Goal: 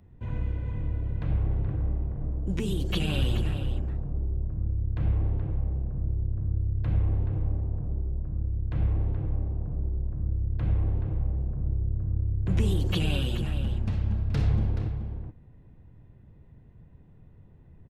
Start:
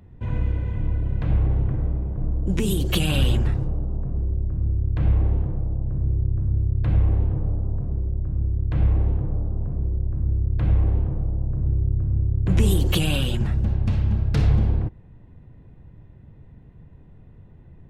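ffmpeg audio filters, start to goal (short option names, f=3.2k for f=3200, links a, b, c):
-filter_complex "[0:a]asplit=2[a][b];[b]adelay=425.7,volume=-8dB,highshelf=f=4k:g=-9.58[c];[a][c]amix=inputs=2:normalize=0,acrossover=split=6000[d][e];[e]acompressor=threshold=-44dB:ratio=4:attack=1:release=60[f];[d][f]amix=inputs=2:normalize=0,volume=-6.5dB"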